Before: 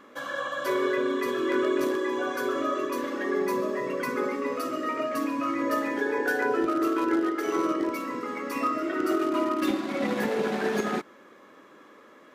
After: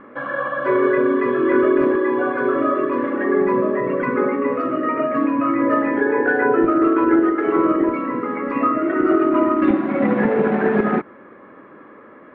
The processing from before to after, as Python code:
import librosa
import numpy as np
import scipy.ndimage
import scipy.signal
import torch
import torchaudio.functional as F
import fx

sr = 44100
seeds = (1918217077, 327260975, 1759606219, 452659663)

y = scipy.signal.sosfilt(scipy.signal.butter(4, 2100.0, 'lowpass', fs=sr, output='sos'), x)
y = fx.low_shelf(y, sr, hz=160.0, db=10.0)
y = F.gain(torch.from_numpy(y), 8.0).numpy()